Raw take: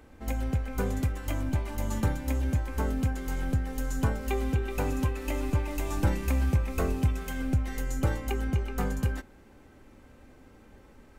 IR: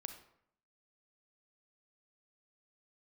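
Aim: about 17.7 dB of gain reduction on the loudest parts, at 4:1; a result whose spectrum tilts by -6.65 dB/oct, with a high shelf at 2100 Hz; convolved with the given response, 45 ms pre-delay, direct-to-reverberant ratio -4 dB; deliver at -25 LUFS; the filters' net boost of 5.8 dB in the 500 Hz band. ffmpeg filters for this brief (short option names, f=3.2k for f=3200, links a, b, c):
-filter_complex "[0:a]equalizer=f=500:t=o:g=7.5,highshelf=f=2.1k:g=-4,acompressor=threshold=-42dB:ratio=4,asplit=2[a][b];[1:a]atrim=start_sample=2205,adelay=45[c];[b][c]afir=irnorm=-1:irlink=0,volume=7.5dB[d];[a][d]amix=inputs=2:normalize=0,volume=14.5dB"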